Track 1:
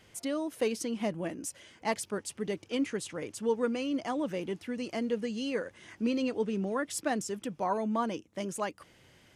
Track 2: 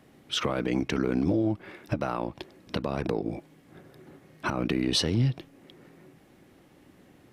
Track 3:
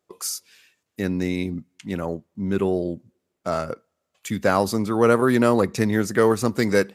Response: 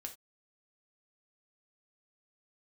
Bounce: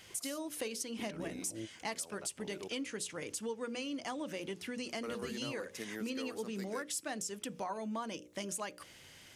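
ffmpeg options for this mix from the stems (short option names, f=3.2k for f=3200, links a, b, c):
-filter_complex "[0:a]highshelf=f=2k:g=10.5,bandreject=f=60:t=h:w=6,bandreject=f=120:t=h:w=6,bandreject=f=180:t=h:w=6,bandreject=f=240:t=h:w=6,bandreject=f=300:t=h:w=6,bandreject=f=360:t=h:w=6,bandreject=f=420:t=h:w=6,bandreject=f=480:t=h:w=6,bandreject=f=540:t=h:w=6,bandreject=f=600:t=h:w=6,volume=-1.5dB,asplit=2[a][b];[b]volume=-15dB[c];[1:a]acrossover=split=650[d][e];[d]aeval=exprs='val(0)*(1-1/2+1/2*cos(2*PI*2.8*n/s))':c=same[f];[e]aeval=exprs='val(0)*(1-1/2-1/2*cos(2*PI*2.8*n/s))':c=same[g];[f][g]amix=inputs=2:normalize=0,adelay=200,volume=-9dB[h];[2:a]highpass=260,highshelf=f=4k:g=9.5,volume=-18.5dB,asplit=3[i][j][k];[i]atrim=end=2.68,asetpts=PTS-STARTPTS,afade=t=out:st=2.676:d=0.004:c=hsin[l];[j]atrim=start=2.68:end=5.03,asetpts=PTS-STARTPTS,volume=0[m];[k]atrim=start=5.03,asetpts=PTS-STARTPTS,afade=t=in:d=0.004:c=hsin[n];[l][m][n]concat=n=3:v=0:a=1,asplit=2[o][p];[p]apad=whole_len=331760[q];[h][q]sidechaingate=range=-33dB:threshold=-59dB:ratio=16:detection=peak[r];[3:a]atrim=start_sample=2205[s];[c][s]afir=irnorm=-1:irlink=0[t];[a][r][o][t]amix=inputs=4:normalize=0,acompressor=threshold=-38dB:ratio=4"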